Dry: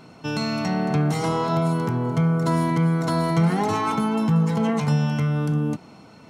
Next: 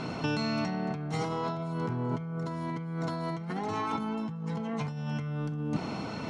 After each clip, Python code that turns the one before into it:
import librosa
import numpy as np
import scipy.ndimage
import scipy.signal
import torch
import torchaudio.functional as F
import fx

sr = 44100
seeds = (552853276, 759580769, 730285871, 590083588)

y = scipy.signal.sosfilt(scipy.signal.butter(2, 6100.0, 'lowpass', fs=sr, output='sos'), x)
y = fx.over_compress(y, sr, threshold_db=-33.0, ratio=-1.0)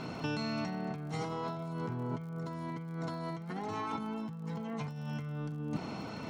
y = fx.dmg_crackle(x, sr, seeds[0], per_s=56.0, level_db=-44.0)
y = y * librosa.db_to_amplitude(-5.0)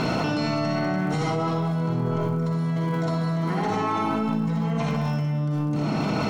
y = x + 10.0 ** (-10.0 / 20.0) * np.pad(x, (int(196 * sr / 1000.0), 0))[:len(x)]
y = fx.rev_freeverb(y, sr, rt60_s=1.0, hf_ratio=0.6, predelay_ms=20, drr_db=-3.0)
y = fx.env_flatten(y, sr, amount_pct=100)
y = y * librosa.db_to_amplitude(3.0)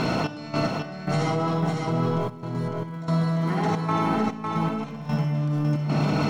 y = fx.step_gate(x, sr, bpm=112, pattern='xx..x...xxxxx.x', floor_db=-12.0, edge_ms=4.5)
y = y + 10.0 ** (-4.0 / 20.0) * np.pad(y, (int(554 * sr / 1000.0), 0))[:len(y)]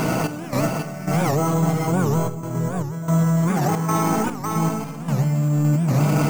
y = fx.room_shoebox(x, sr, seeds[1], volume_m3=3800.0, walls='mixed', distance_m=0.6)
y = np.repeat(scipy.signal.resample_poly(y, 1, 6), 6)[:len(y)]
y = fx.record_warp(y, sr, rpm=78.0, depth_cents=250.0)
y = y * librosa.db_to_amplitude(2.5)